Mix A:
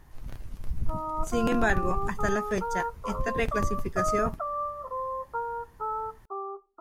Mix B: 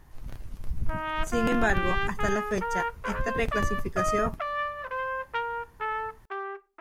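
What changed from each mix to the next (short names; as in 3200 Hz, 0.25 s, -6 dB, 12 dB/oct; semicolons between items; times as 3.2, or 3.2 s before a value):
background: remove brick-wall FIR low-pass 1400 Hz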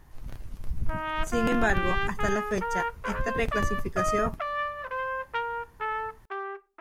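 none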